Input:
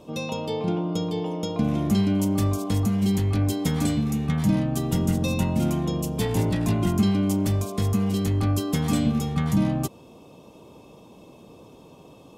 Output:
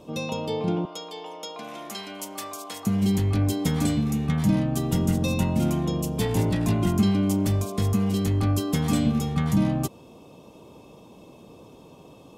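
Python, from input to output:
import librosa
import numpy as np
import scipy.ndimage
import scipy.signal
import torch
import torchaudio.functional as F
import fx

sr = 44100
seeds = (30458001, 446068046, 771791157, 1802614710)

y = fx.highpass(x, sr, hz=760.0, slope=12, at=(0.85, 2.87))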